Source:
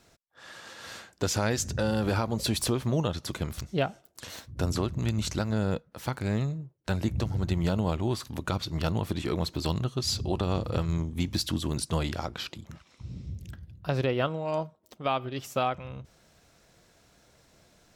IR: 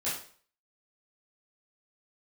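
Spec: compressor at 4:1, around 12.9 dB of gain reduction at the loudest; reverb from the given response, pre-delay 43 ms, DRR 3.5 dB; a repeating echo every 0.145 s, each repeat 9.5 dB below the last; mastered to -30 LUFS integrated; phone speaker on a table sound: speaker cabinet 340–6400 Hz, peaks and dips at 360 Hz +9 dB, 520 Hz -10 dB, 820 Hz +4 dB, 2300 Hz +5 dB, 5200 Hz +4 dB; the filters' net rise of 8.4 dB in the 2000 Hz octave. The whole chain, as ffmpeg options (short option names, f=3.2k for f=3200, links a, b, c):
-filter_complex "[0:a]equalizer=f=2k:t=o:g=9,acompressor=threshold=-38dB:ratio=4,aecho=1:1:145|290|435|580:0.335|0.111|0.0365|0.012,asplit=2[a][b];[1:a]atrim=start_sample=2205,adelay=43[c];[b][c]afir=irnorm=-1:irlink=0,volume=-9.5dB[d];[a][d]amix=inputs=2:normalize=0,highpass=f=340:w=0.5412,highpass=f=340:w=1.3066,equalizer=f=360:t=q:w=4:g=9,equalizer=f=520:t=q:w=4:g=-10,equalizer=f=820:t=q:w=4:g=4,equalizer=f=2.3k:t=q:w=4:g=5,equalizer=f=5.2k:t=q:w=4:g=4,lowpass=f=6.4k:w=0.5412,lowpass=f=6.4k:w=1.3066,volume=10dB"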